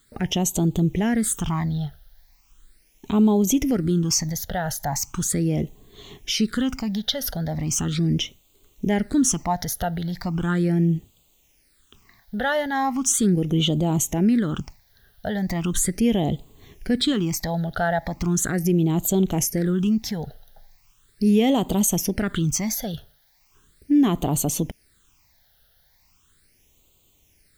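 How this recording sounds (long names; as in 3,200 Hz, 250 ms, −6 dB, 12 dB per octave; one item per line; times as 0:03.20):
a quantiser's noise floor 10 bits, dither triangular
phaser sweep stages 8, 0.38 Hz, lowest notch 310–1,700 Hz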